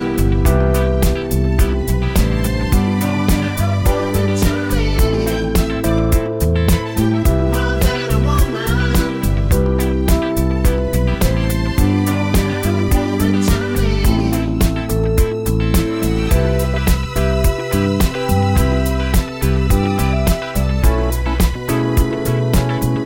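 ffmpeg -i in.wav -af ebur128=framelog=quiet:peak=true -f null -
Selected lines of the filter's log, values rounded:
Integrated loudness:
  I:         -16.6 LUFS
  Threshold: -26.6 LUFS
Loudness range:
  LRA:         0.6 LU
  Threshold: -36.6 LUFS
  LRA low:   -16.9 LUFS
  LRA high:  -16.3 LUFS
True peak:
  Peak:       -2.4 dBFS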